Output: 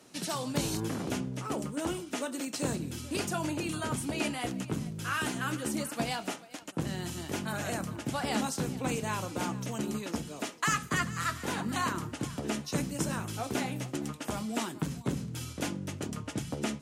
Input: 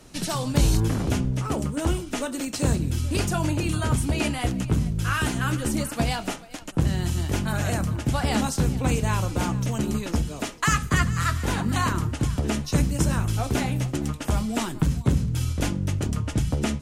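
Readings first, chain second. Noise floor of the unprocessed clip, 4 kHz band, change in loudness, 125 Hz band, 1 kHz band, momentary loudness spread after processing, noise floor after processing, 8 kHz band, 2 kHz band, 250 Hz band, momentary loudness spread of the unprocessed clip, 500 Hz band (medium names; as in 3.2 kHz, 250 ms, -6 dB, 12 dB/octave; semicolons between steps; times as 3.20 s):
-38 dBFS, -5.5 dB, -8.5 dB, -13.5 dB, -5.5 dB, 5 LU, -47 dBFS, -5.5 dB, -5.5 dB, -7.5 dB, 4 LU, -5.5 dB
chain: high-pass 190 Hz 12 dB/octave; trim -5.5 dB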